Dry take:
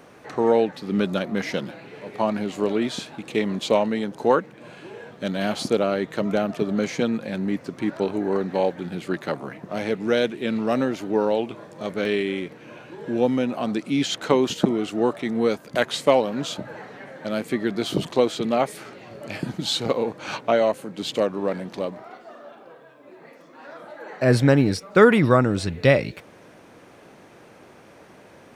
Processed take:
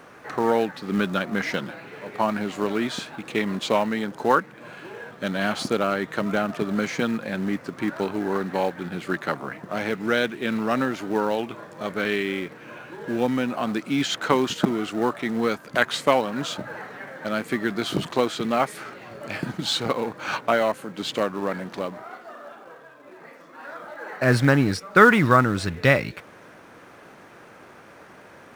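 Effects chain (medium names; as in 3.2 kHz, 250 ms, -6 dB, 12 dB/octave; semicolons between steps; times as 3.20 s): dynamic bell 510 Hz, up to -4 dB, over -28 dBFS, Q 1.4; in parallel at -10 dB: companded quantiser 4-bit; on the sum: peaking EQ 1.4 kHz +7.5 dB 1.2 oct; trim -3.5 dB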